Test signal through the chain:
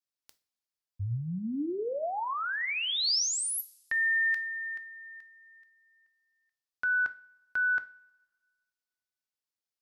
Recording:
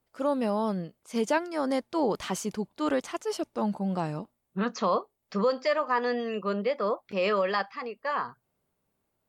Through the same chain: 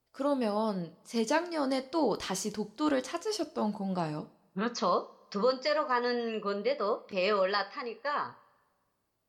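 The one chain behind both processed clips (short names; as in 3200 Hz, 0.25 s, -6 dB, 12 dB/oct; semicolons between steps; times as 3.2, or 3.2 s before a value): bell 4900 Hz +6.5 dB 0.65 oct; two-slope reverb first 0.33 s, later 1.5 s, from -21 dB, DRR 10 dB; gain -2.5 dB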